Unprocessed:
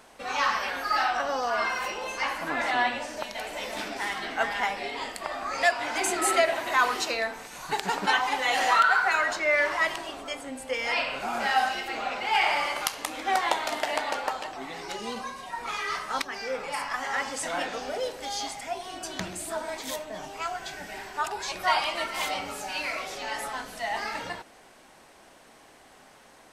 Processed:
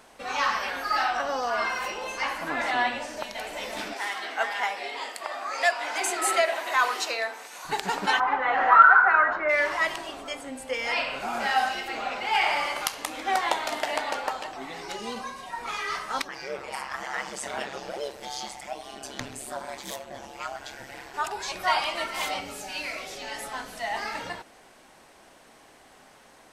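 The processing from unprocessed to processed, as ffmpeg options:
ffmpeg -i in.wav -filter_complex "[0:a]asettb=1/sr,asplit=3[link_01][link_02][link_03];[link_01]atrim=end=3.944[link_04];[link_02]atrim=start=3.94:end=7.65,asetpts=PTS-STARTPTS,afade=type=in:duration=0.004:curve=qsin,afade=type=out:start_time=3.706:duration=0.004:curve=qsin,highpass=430[link_05];[link_03]atrim=start=7.646[link_06];[link_04][link_05]acrossfade=duration=0.004:curve1=hsin:curve2=qsin[link_07];[link_07][link_06]acrossfade=duration=0.004:curve1=qsin:curve2=hsin,asplit=3[link_08][link_09][link_10];[link_08]afade=type=out:start_time=8.19:duration=0.02[link_11];[link_09]lowpass=frequency=1400:width_type=q:width=2.4,afade=type=in:start_time=8.19:duration=0.02,afade=type=out:start_time=9.48:duration=0.02[link_12];[link_10]afade=type=in:start_time=9.48:duration=0.02[link_13];[link_11][link_12][link_13]amix=inputs=3:normalize=0,asettb=1/sr,asplit=3[link_14][link_15][link_16];[link_14]atrim=end=16.284[link_17];[link_15]atrim=start=16.28:end=21.14,asetpts=PTS-STARTPTS,afade=type=in:duration=0.004:curve=qsin,afade=type=out:start_time=4.856:duration=0.004:curve=qsin,aeval=exprs='val(0)*sin(2*PI*68*n/s)':channel_layout=same[link_18];[link_16]atrim=start=21.136[link_19];[link_17][link_18]acrossfade=duration=0.004:curve1=hsin:curve2=qsin[link_20];[link_20][link_19]acrossfade=duration=0.004:curve1=qsin:curve2=hsin,asettb=1/sr,asplit=3[link_21][link_22][link_23];[link_21]atrim=end=22.404[link_24];[link_22]atrim=start=22.4:end=23.52,asetpts=PTS-STARTPTS,afade=type=in:duration=0.004:curve=qsin,afade=type=out:start_time=1.116:duration=0.004:curve=qsin,equalizer=frequency=1100:width_type=o:width=1.4:gain=-6.5[link_25];[link_23]atrim=start=23.516[link_26];[link_24][link_25]acrossfade=duration=0.004:curve1=hsin:curve2=qsin[link_27];[link_27][link_26]acrossfade=duration=0.004:curve1=qsin:curve2=hsin" out.wav

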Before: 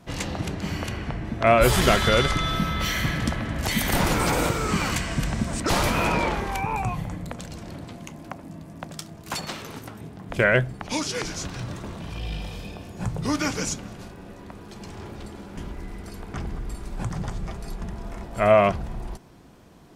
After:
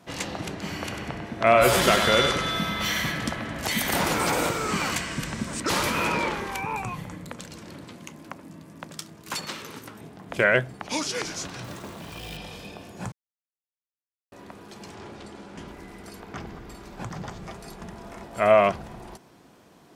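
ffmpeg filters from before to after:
ffmpeg -i in.wav -filter_complex "[0:a]asettb=1/sr,asplit=3[link_01][link_02][link_03];[link_01]atrim=end=0.734[link_04];[link_02]atrim=start=0.73:end=3.12,asetpts=PTS-STARTPTS,afade=type=in:duration=0.004:curve=qsin,afade=type=out:start_time=2.386:duration=0.004:curve=qsin,aecho=1:1:97|194|291|388|485:0.447|0.205|0.0945|0.0435|0.02,atrim=end_sample=105399[link_05];[link_03]atrim=start=3.116[link_06];[link_04][link_05]acrossfade=duration=0.004:curve1=hsin:curve2=qsin[link_07];[link_07][link_06]acrossfade=duration=0.004:curve1=qsin:curve2=hsin,asettb=1/sr,asplit=3[link_08][link_09][link_10];[link_08]atrim=end=5.044[link_11];[link_09]atrim=start=5.04:end=9.96,asetpts=PTS-STARTPTS,afade=type=in:duration=0.004:curve=qsin,afade=type=out:start_time=4.916:duration=0.004:curve=qsin,equalizer=frequency=710:width_type=o:width=0.37:gain=-8.5[link_12];[link_10]atrim=start=9.956[link_13];[link_11][link_12]acrossfade=duration=0.004:curve1=hsin:curve2=qsin[link_14];[link_14][link_13]acrossfade=duration=0.004:curve1=qsin:curve2=hsin,asettb=1/sr,asplit=3[link_15][link_16][link_17];[link_15]atrim=end=11.644[link_18];[link_16]atrim=start=11.64:end=12.37,asetpts=PTS-STARTPTS,afade=type=in:duration=0.004:curve=qsin,afade=type=out:start_time=0.726:duration=0.004:curve=qsin,acrusher=bits=4:mode=log:mix=0:aa=0.000001[link_19];[link_17]atrim=start=12.366[link_20];[link_18][link_19]acrossfade=duration=0.004:curve1=hsin:curve2=qsin[link_21];[link_21][link_20]acrossfade=duration=0.004:curve1=qsin:curve2=hsin,asettb=1/sr,asplit=3[link_22][link_23][link_24];[link_22]atrim=end=14.944[link_25];[link_23]atrim=start=14.94:end=15.68,asetpts=PTS-STARTPTS,afade=type=in:duration=0.004:curve=qsin,afade=type=out:start_time=0.736:duration=0.004:curve=qsin,lowpass=8600[link_26];[link_24]atrim=start=15.676[link_27];[link_25][link_26]acrossfade=duration=0.004:curve1=hsin:curve2=qsin[link_28];[link_28][link_27]acrossfade=duration=0.004:curve1=qsin:curve2=hsin,asettb=1/sr,asplit=3[link_29][link_30][link_31];[link_29]atrim=end=16.204[link_32];[link_30]atrim=start=16.2:end=17.42,asetpts=PTS-STARTPTS,afade=type=in:duration=0.004:curve=qsin,afade=type=out:start_time=1.216:duration=0.004:curve=qsin,equalizer=frequency=9300:width_type=o:width=0.52:gain=-9[link_33];[link_31]atrim=start=17.416[link_34];[link_32][link_33]acrossfade=duration=0.004:curve1=hsin:curve2=qsin[link_35];[link_35][link_34]acrossfade=duration=0.004:curve1=qsin:curve2=hsin,asplit=3[link_36][link_37][link_38];[link_36]atrim=end=13.12,asetpts=PTS-STARTPTS,afade=type=out:start_time=13.116:duration=0.004:curve=hsin[link_39];[link_37]atrim=start=13.12:end=14.32,asetpts=PTS-STARTPTS,volume=0[link_40];[link_38]atrim=start=14.32,asetpts=PTS-STARTPTS,afade=type=in:duration=0.004:curve=hsin[link_41];[link_39][link_40][link_41]concat=n=3:v=0:a=1,highpass=frequency=260:poles=1" out.wav

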